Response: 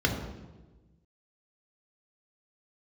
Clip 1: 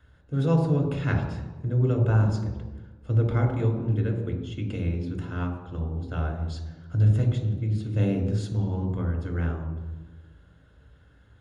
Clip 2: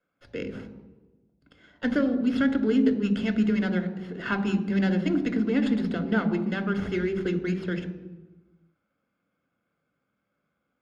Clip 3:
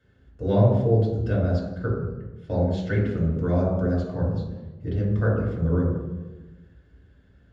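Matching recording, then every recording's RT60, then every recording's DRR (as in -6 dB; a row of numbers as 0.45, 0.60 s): 1; 1.2, 1.2, 1.2 s; 1.5, 8.0, -5.0 dB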